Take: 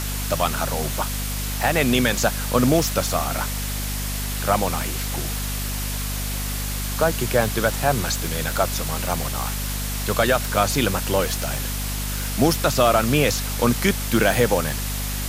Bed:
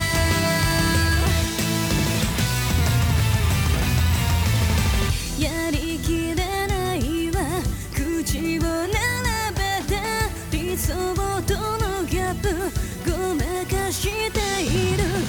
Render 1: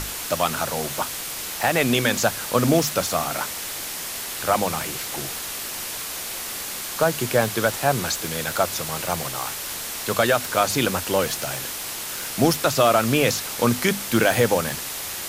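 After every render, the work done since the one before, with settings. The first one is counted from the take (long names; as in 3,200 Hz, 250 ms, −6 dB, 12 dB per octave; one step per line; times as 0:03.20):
mains-hum notches 50/100/150/200/250 Hz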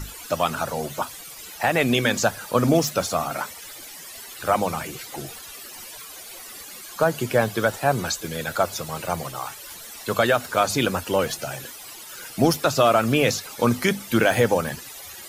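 broadband denoise 15 dB, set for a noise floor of −32 dBFS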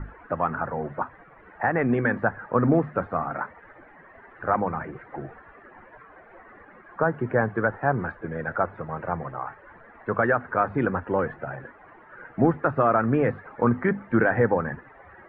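elliptic low-pass filter 1,800 Hz, stop band 70 dB
dynamic equaliser 620 Hz, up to −6 dB, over −35 dBFS, Q 3.4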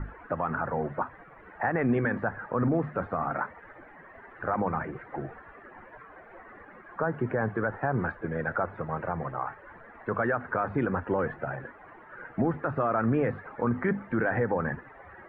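brickwall limiter −17.5 dBFS, peak gain reduction 9.5 dB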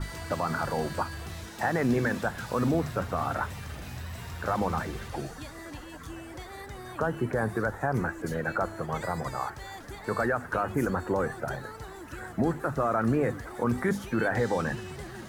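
mix in bed −19.5 dB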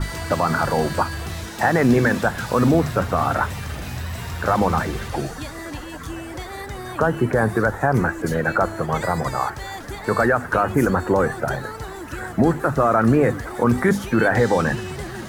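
level +9.5 dB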